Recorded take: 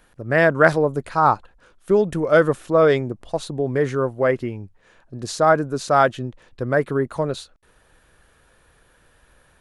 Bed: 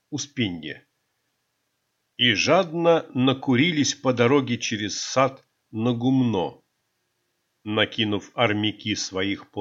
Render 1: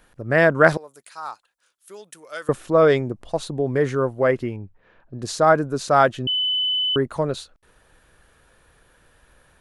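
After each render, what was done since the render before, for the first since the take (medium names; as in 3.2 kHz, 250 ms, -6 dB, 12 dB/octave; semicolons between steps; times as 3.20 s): 0.77–2.49 s: differentiator; 4.56–5.22 s: distance through air 300 m; 6.27–6.96 s: bleep 3.01 kHz -19 dBFS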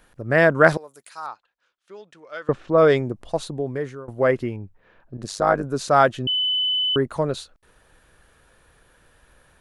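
1.26–2.78 s: distance through air 190 m; 3.36–4.08 s: fade out, to -23 dB; 5.17–5.64 s: AM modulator 100 Hz, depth 70%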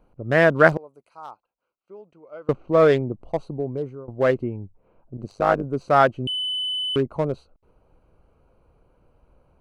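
local Wiener filter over 25 samples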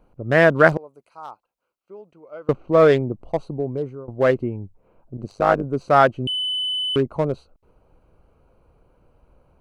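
trim +2 dB; peak limiter -2 dBFS, peak gain reduction 1.5 dB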